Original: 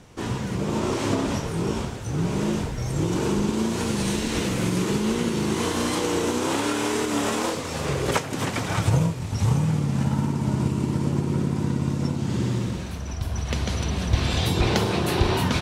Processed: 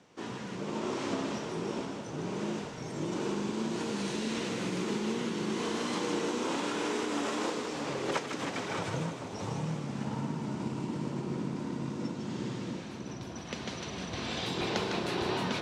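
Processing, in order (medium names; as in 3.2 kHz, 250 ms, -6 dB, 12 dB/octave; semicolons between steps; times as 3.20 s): three-band isolator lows -22 dB, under 160 Hz, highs -19 dB, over 7.7 kHz; two-band feedback delay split 1 kHz, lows 655 ms, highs 154 ms, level -6 dB; trim -8.5 dB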